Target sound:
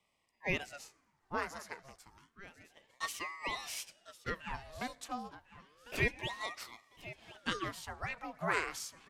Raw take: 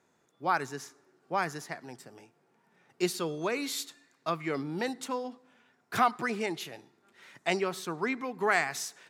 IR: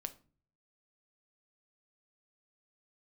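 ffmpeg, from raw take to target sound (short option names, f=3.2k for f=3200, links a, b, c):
-filter_complex "[0:a]asplit=2[a][b];[b]aecho=0:1:1050|2100|3150:0.158|0.046|0.0133[c];[a][c]amix=inputs=2:normalize=0,aresample=32000,aresample=44100,highpass=f=390:w=0.5412,highpass=f=390:w=1.3066,aeval=exprs='val(0)*sin(2*PI*900*n/s+900*0.75/0.3*sin(2*PI*0.3*n/s))':c=same,volume=-3.5dB"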